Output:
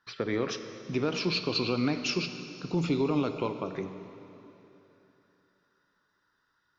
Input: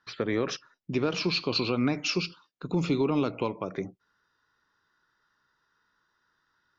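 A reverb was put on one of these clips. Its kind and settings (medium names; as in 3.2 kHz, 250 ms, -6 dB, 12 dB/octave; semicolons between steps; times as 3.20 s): plate-style reverb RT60 3.2 s, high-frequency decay 0.95×, DRR 8 dB; trim -2 dB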